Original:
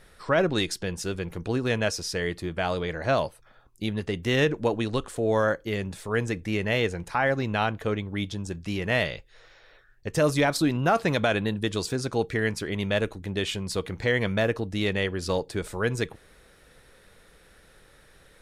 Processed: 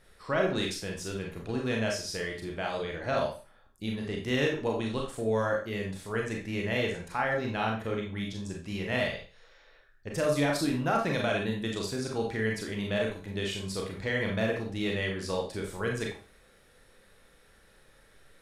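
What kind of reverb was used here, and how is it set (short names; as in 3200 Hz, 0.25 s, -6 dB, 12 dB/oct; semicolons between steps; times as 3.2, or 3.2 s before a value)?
Schroeder reverb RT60 0.37 s, combs from 28 ms, DRR -0.5 dB; gain -7.5 dB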